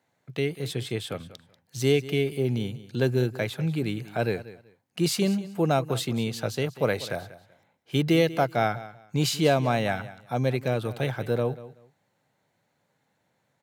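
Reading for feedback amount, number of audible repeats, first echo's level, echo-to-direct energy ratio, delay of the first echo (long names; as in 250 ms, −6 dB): 21%, 2, −16.5 dB, −16.5 dB, 190 ms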